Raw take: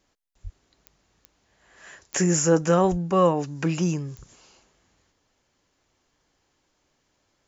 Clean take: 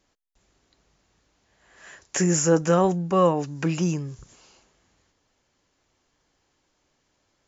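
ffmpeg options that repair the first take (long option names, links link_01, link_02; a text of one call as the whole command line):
ffmpeg -i in.wav -filter_complex "[0:a]adeclick=threshold=4,asplit=3[link_01][link_02][link_03];[link_01]afade=type=out:start_time=0.43:duration=0.02[link_04];[link_02]highpass=frequency=140:width=0.5412,highpass=frequency=140:width=1.3066,afade=type=in:start_time=0.43:duration=0.02,afade=type=out:start_time=0.55:duration=0.02[link_05];[link_03]afade=type=in:start_time=0.55:duration=0.02[link_06];[link_04][link_05][link_06]amix=inputs=3:normalize=0,asplit=3[link_07][link_08][link_09];[link_07]afade=type=out:start_time=2.9:duration=0.02[link_10];[link_08]highpass=frequency=140:width=0.5412,highpass=frequency=140:width=1.3066,afade=type=in:start_time=2.9:duration=0.02,afade=type=out:start_time=3.02:duration=0.02[link_11];[link_09]afade=type=in:start_time=3.02:duration=0.02[link_12];[link_10][link_11][link_12]amix=inputs=3:normalize=0" out.wav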